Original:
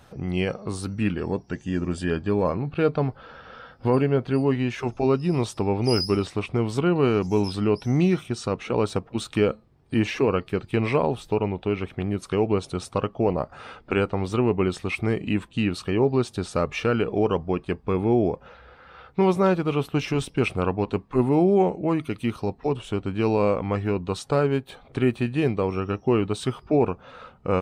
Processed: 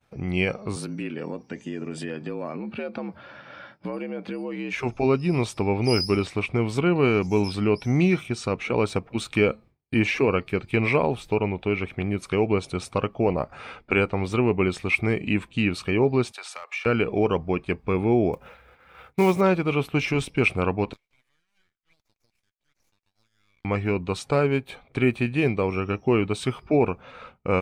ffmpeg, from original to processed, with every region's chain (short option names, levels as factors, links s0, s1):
-filter_complex "[0:a]asettb=1/sr,asplit=3[s0][s1][s2];[s0]atrim=end=0.764[s3];[s1]atrim=start=0.76:end=4.73,asetpts=PTS-STARTPTS,afade=t=in:d=0.004:c=qsin,afade=t=out:st=3.966:d=0.004:c=qsin,acompressor=threshold=0.0398:ratio=6:attack=3.2:release=140:knee=1:detection=peak,afreqshift=68[s4];[s2]atrim=start=4.726[s5];[s3][s4]acrossfade=d=0.004:c1=hsin:c2=qsin[s6];[s6][s5]acrossfade=d=0.004:c1=qsin:c2=hsin,asettb=1/sr,asplit=3[s7][s8][s9];[s7]atrim=end=16.324[s10];[s8]atrim=start=16.32:end=16.86,asetpts=PTS-STARTPTS,afade=t=in:d=0.004:c=qsin,afade=t=out:st=0.536:d=0.004:c=qsin,highpass=f=740:w=0.5412,highpass=f=740:w=1.3066,volume=11.2,asoftclip=hard,volume=0.0891,acompressor=threshold=0.02:ratio=10:attack=3.2:release=140:knee=1:detection=peak[s11];[s9]atrim=start=16.856[s12];[s10][s11]acrossfade=d=0.004:c1=hsin:c2=qsin[s13];[s13][s12]acrossfade=d=0.004:c1=qsin:c2=hsin,asettb=1/sr,asplit=3[s14][s15][s16];[s14]atrim=end=18.334[s17];[s15]atrim=start=18.33:end=19.41,asetpts=PTS-STARTPTS,afade=t=in:d=0.004:c=qsin,afade=t=out:st=1.076:d=0.004:c=qsin,bandreject=f=4400:w=13,acrusher=bits=6:mode=log:mix=0:aa=0.000001[s18];[s16]atrim=start=19.406[s19];[s17][s18]acrossfade=d=0.004:c1=hsin:c2=qsin[s20];[s20][s19]acrossfade=d=0.004:c1=qsin:c2=hsin,asettb=1/sr,asplit=3[s21][s22][s23];[s21]atrim=end=20.934[s24];[s22]atrim=start=20.93:end=23.65,asetpts=PTS-STARTPTS,afade=t=in:d=0.004:c=qsin,afade=t=out:st=2.716:d=0.004:c=qsin,highpass=f=1300:w=0.5412,highpass=f=1300:w=1.3066,acompressor=threshold=0.00282:ratio=5:attack=3.2:release=140:knee=1:detection=peak,aeval=exprs='abs(val(0))':c=same[s25];[s23]atrim=start=23.646[s26];[s24][s25]acrossfade=d=0.004:c1=hsin:c2=qsin[s27];[s27][s26]acrossfade=d=0.004:c1=qsin:c2=hsin,equalizer=f=2300:w=5.5:g=10.5,agate=range=0.0224:threshold=0.00794:ratio=3:detection=peak"